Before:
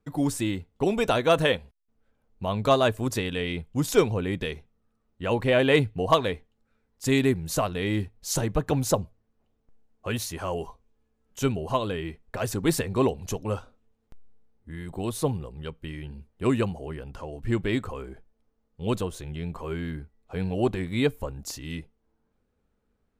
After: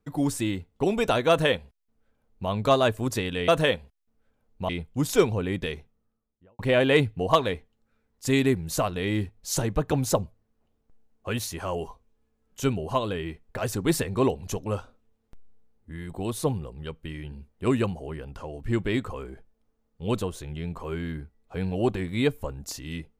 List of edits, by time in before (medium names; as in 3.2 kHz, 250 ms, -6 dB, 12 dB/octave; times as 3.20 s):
1.29–2.50 s: copy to 3.48 s
4.53–5.38 s: studio fade out